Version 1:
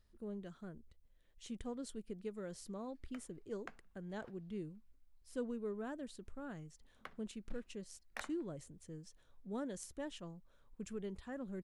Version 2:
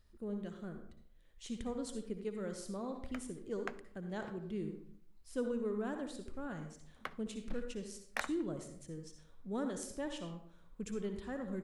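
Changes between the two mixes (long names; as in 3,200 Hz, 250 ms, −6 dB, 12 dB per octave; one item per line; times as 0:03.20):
background +7.5 dB
reverb: on, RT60 0.65 s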